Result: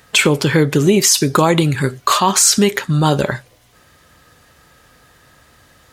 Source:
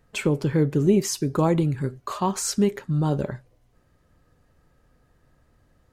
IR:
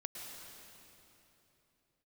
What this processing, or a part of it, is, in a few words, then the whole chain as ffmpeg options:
mastering chain: -af "highpass=52,equalizer=f=3.5k:t=o:w=0.34:g=3,acompressor=threshold=-22dB:ratio=2,tiltshelf=f=860:g=-7.5,alimiter=level_in=17dB:limit=-1dB:release=50:level=0:latency=1,volume=-1dB"

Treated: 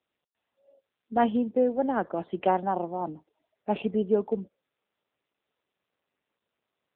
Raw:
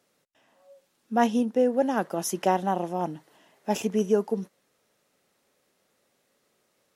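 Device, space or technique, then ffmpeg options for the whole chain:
mobile call with aggressive noise cancelling: -af "highpass=170,afftdn=nr=24:nf=-47" -ar 8000 -c:a libopencore_amrnb -b:a 7950

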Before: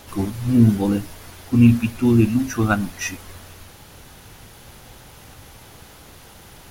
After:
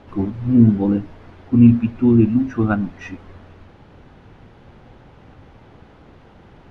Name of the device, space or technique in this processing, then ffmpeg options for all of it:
phone in a pocket: -af "lowpass=3.1k,equalizer=f=260:t=o:w=1.9:g=4.5,highshelf=f=2.2k:g=-9.5,volume=-1.5dB"

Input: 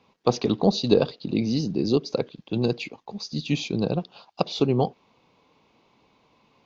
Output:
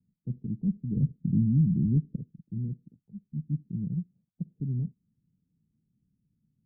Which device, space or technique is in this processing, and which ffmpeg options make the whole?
the neighbour's flat through the wall: -filter_complex "[0:a]asettb=1/sr,asplit=3[a][b][c];[a]atrim=end=0.964[d];[b]atrim=start=0.96:end=2.18,asetpts=PTS-STARTPTS,afade=t=in:d=0.004:c=qsin,afade=t=out:st=1.216:d=0.004:c=qsin,lowshelf=f=380:g=11[e];[c]atrim=start=2.176[f];[d][e]acrossfade=d=0.004:c1=hsin:c2=qsin[g];[g][f]acrossfade=d=0.004:c1=qsin:c2=hsin,lowpass=f=190:w=0.5412,lowpass=f=190:w=1.3066,equalizer=f=170:t=o:w=0.77:g=4,volume=-4.5dB"

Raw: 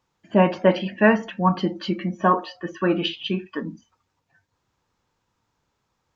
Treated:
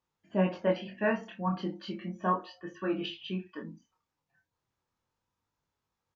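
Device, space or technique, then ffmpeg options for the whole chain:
double-tracked vocal: -filter_complex "[0:a]asplit=2[a][b];[b]adelay=32,volume=-11.5dB[c];[a][c]amix=inputs=2:normalize=0,flanger=delay=20:depth=6.2:speed=0.35,volume=-9dB"

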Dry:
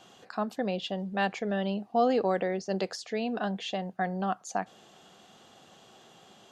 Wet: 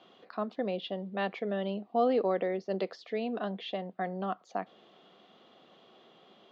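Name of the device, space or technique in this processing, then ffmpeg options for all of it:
kitchen radio: -af "highpass=230,equalizer=f=830:t=q:w=4:g=-7,equalizer=f=1.6k:t=q:w=4:g=-8,equalizer=f=2.7k:t=q:w=4:g=-5,lowpass=f=3.6k:w=0.5412,lowpass=f=3.6k:w=1.3066"

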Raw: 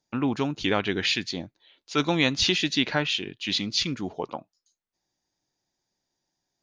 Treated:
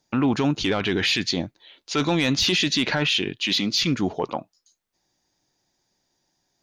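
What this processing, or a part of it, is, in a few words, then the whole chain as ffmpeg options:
soft clipper into limiter: -filter_complex "[0:a]asoftclip=type=tanh:threshold=-13.5dB,alimiter=limit=-22dB:level=0:latency=1:release=14,asettb=1/sr,asplit=3[a][b][c];[a]atrim=end=3.414[d];[b]atrim=start=3.41:end=3.83,asetpts=PTS-STARTPTS,afade=t=in:d=0.004:c=qsin,afade=t=out:st=0.416:d=0.004:c=qsin,highpass=160[e];[c]atrim=start=3.826[f];[d][e]acrossfade=d=0.004:c1=hsin:c2=qsin[g];[g][f]acrossfade=d=0.004:c1=qsin:c2=hsin,volume=8.5dB"

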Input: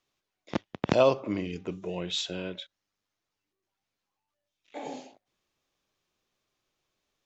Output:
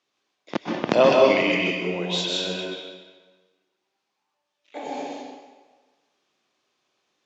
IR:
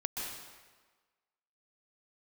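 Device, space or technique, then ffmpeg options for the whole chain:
supermarket ceiling speaker: -filter_complex "[0:a]asettb=1/sr,asplit=3[a][b][c];[a]atrim=end=1.124[d];[b]atrim=start=1.12:end=1.55,asetpts=PTS-STARTPTS,afade=t=in:d=0.004:c=qsin,afade=t=out:st=0.426:d=0.004:c=qsin,highshelf=f=1.6k:t=q:w=3:g=9.5[e];[c]atrim=start=1.546[f];[d][e]acrossfade=d=0.004:c1=hsin:c2=qsin[g];[g][f]acrossfade=d=0.004:c1=qsin:c2=hsin,highpass=220,lowpass=6.9k[h];[1:a]atrim=start_sample=2205[i];[h][i]afir=irnorm=-1:irlink=0,volume=5.5dB"

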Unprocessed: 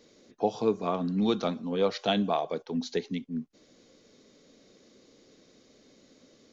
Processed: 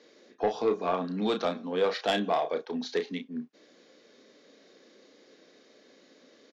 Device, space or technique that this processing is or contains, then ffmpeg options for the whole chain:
intercom: -filter_complex "[0:a]highpass=310,lowpass=4.8k,equalizer=f=1.7k:t=o:w=0.28:g=6,asoftclip=type=tanh:threshold=-20.5dB,asplit=2[a][b];[b]adelay=33,volume=-7.5dB[c];[a][c]amix=inputs=2:normalize=0,volume=2.5dB"

